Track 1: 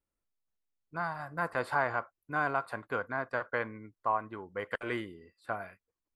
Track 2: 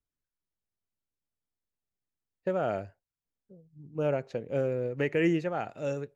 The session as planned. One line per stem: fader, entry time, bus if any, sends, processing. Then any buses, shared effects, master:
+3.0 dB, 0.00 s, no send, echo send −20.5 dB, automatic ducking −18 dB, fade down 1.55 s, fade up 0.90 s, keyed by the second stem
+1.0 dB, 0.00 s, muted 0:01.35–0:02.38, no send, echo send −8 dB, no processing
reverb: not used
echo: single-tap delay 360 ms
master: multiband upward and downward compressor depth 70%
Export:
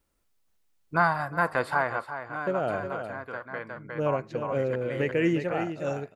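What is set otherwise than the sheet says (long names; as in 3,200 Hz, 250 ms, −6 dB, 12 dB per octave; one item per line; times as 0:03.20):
stem 1 +3.0 dB → +13.5 dB
master: missing multiband upward and downward compressor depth 70%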